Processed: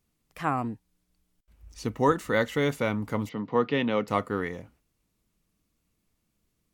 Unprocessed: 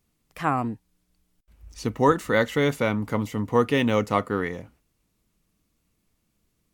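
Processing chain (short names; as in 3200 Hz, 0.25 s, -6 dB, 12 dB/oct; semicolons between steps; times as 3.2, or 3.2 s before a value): 3.29–4.08 elliptic band-pass 140–4400 Hz, stop band 40 dB; gain -3.5 dB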